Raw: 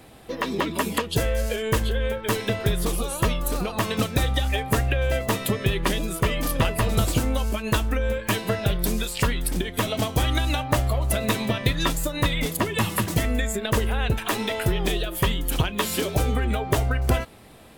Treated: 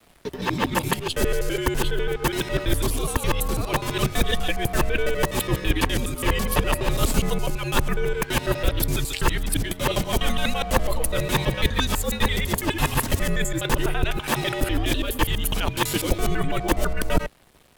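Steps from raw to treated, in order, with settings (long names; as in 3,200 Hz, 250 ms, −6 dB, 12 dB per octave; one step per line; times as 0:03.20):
reversed piece by piece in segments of 83 ms
dead-zone distortion −47.5 dBFS
frequency shifter −76 Hz
level +2 dB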